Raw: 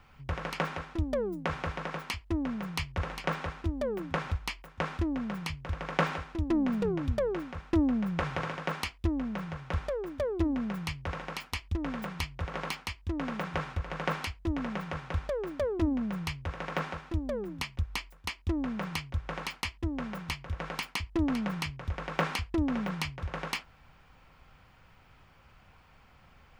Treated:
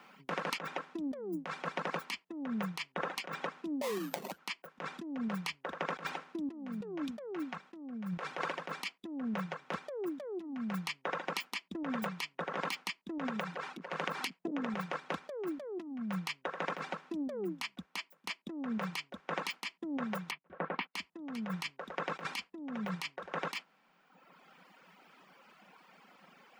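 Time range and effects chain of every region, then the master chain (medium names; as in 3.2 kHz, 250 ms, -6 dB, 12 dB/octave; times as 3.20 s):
3.81–4.37 s: sample-rate reducer 1.5 kHz, jitter 20% + whistle 13 kHz -59 dBFS + compression 12:1, threshold -35 dBFS
13.29–14.75 s: compression 12:1, threshold -32 dBFS + transformer saturation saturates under 560 Hz
20.31–20.95 s: gate -43 dBFS, range -26 dB + distance through air 430 m
whole clip: elliptic high-pass 180 Hz; reverb removal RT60 1.3 s; compressor with a negative ratio -39 dBFS, ratio -1; trim +1 dB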